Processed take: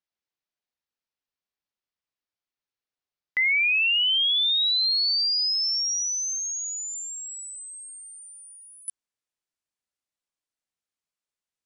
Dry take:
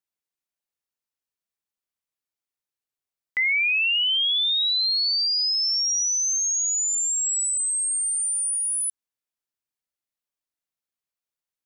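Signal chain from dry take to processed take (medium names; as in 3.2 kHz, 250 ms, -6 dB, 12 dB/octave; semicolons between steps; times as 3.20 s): low-pass 5.7 kHz 24 dB/octave, from 8.88 s 9.8 kHz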